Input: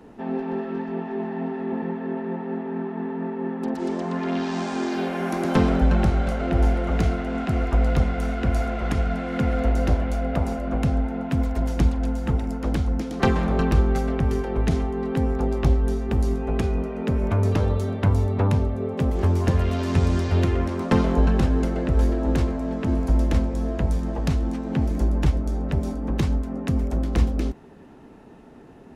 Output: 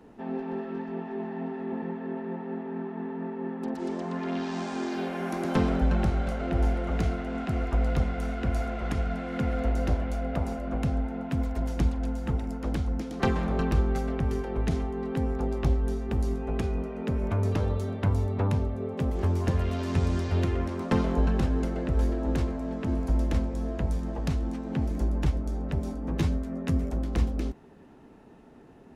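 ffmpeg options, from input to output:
ffmpeg -i in.wav -filter_complex "[0:a]asettb=1/sr,asplit=3[link_01][link_02][link_03];[link_01]atrim=end=26.064[link_04];[link_02]atrim=start=26.06:end=26.9,asetpts=PTS-STARTPTS,afade=type=in:duration=0.004:curve=qsin,afade=type=out:start_time=0.836:duration=0.004:curve=qsin,asplit=2[link_05][link_06];[link_06]adelay=12,volume=-2.5dB[link_07];[link_05][link_07]amix=inputs=2:normalize=0,atrim=end_sample=37044[link_08];[link_03]atrim=start=26.896[link_09];[link_04][link_08]acrossfade=duration=0.004:curve1=hsin:curve2=qsin[link_10];[link_10][link_09]acrossfade=duration=0.004:curve1=qsin:curve2=hsin,volume=-5.5dB" out.wav

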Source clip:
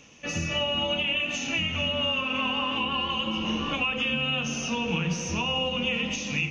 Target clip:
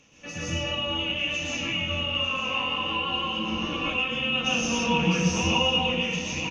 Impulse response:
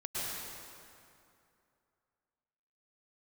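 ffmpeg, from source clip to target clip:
-filter_complex "[0:a]asettb=1/sr,asplit=3[link_01][link_02][link_03];[link_01]atrim=end=4.324[link_04];[link_02]atrim=start=4.32:end=5.8,asetpts=PTS-STARTPTS,afade=type=in:duration=0.004:curve=qsin,afade=type=out:start_time=1.476:duration=0.004:curve=qsin,acontrast=21[link_05];[link_03]atrim=start=5.796[link_06];[link_04][link_05]acrossfade=duration=0.004:curve1=hsin:curve2=qsin[link_07];[link_07][link_06]acrossfade=duration=0.004:curve1=qsin:curve2=hsin,aecho=1:1:900:0.251[link_08];[1:a]atrim=start_sample=2205,afade=type=out:start_time=0.21:duration=0.01,atrim=end_sample=9702,asetrate=38367,aresample=44100[link_09];[link_08][link_09]afir=irnorm=-1:irlink=0,volume=-2dB"

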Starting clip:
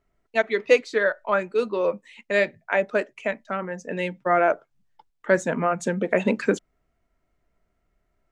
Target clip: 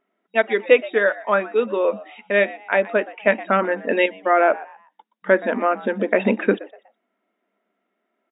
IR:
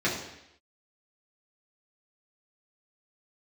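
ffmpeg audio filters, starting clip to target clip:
-filter_complex "[0:a]asplit=4[link_01][link_02][link_03][link_04];[link_02]adelay=122,afreqshift=110,volume=-19dB[link_05];[link_03]adelay=244,afreqshift=220,volume=-28.6dB[link_06];[link_04]adelay=366,afreqshift=330,volume=-38.3dB[link_07];[link_01][link_05][link_06][link_07]amix=inputs=4:normalize=0,asettb=1/sr,asplit=3[link_08][link_09][link_10];[link_08]atrim=end=3.274[link_11];[link_09]atrim=start=3.27:end=4.06,asetpts=PTS-STARTPTS,afade=type=in:duration=0.004:curve=qsin,afade=type=out:start_time=0.786:duration=0.004:curve=qsin,acontrast=84[link_12];[link_10]atrim=start=4.056[link_13];[link_11][link_12]acrossfade=duration=0.004:curve1=hsin:curve2=qsin[link_14];[link_14][link_13]acrossfade=duration=0.004:curve1=qsin:curve2=hsin,afftfilt=real='re*between(b*sr/4096,190,3800)':imag='im*between(b*sr/4096,190,3800)':win_size=4096:overlap=0.75,volume=3.5dB"

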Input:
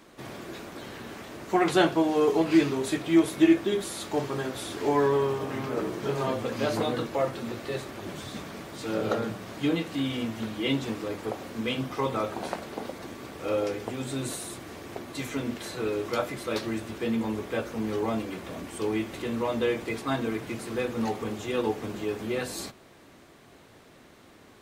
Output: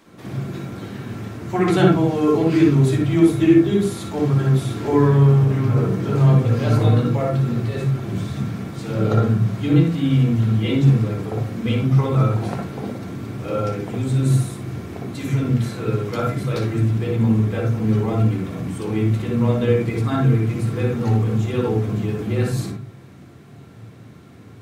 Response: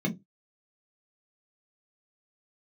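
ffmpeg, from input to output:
-filter_complex "[0:a]asplit=2[link_01][link_02];[1:a]atrim=start_sample=2205,asetrate=27342,aresample=44100,adelay=57[link_03];[link_02][link_03]afir=irnorm=-1:irlink=0,volume=-8dB[link_04];[link_01][link_04]amix=inputs=2:normalize=0"

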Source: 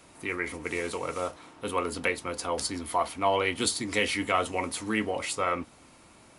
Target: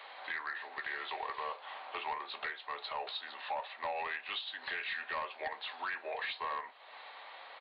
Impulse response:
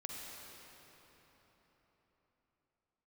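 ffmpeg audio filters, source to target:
-af "highpass=frequency=770:width=0.5412,highpass=frequency=770:width=1.3066,acompressor=threshold=-44dB:ratio=4,aresample=11025,asoftclip=type=tanh:threshold=-39dB,aresample=44100,asetrate=37044,aresample=44100,volume=9dB"

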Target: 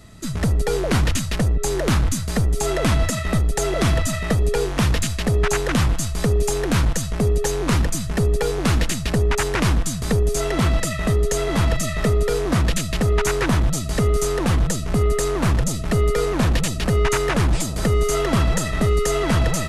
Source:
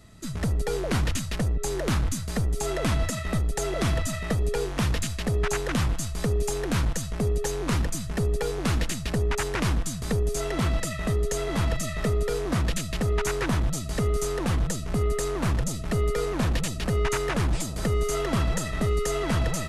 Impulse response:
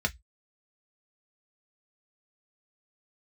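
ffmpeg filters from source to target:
-af "acontrast=67"

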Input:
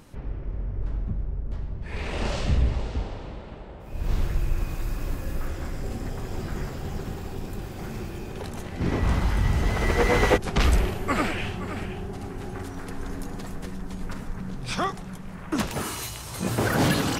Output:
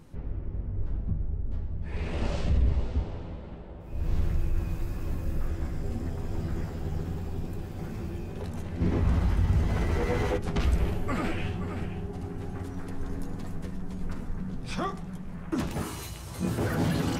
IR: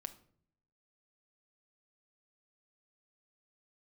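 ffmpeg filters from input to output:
-filter_complex "[0:a]alimiter=limit=-16.5dB:level=0:latency=1:release=32,lowshelf=frequency=460:gain=8,asplit=2[link_01][link_02];[1:a]atrim=start_sample=2205,lowpass=3300,adelay=12[link_03];[link_02][link_03]afir=irnorm=-1:irlink=0,volume=-1dB[link_04];[link_01][link_04]amix=inputs=2:normalize=0,volume=-8.5dB"

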